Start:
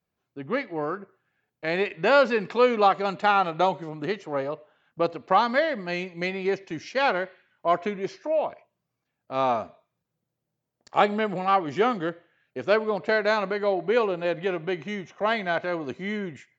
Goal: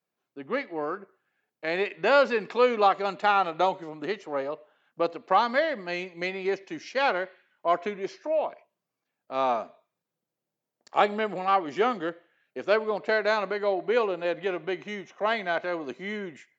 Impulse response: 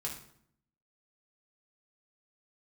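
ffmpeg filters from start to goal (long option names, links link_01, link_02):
-af "highpass=240,volume=-1.5dB"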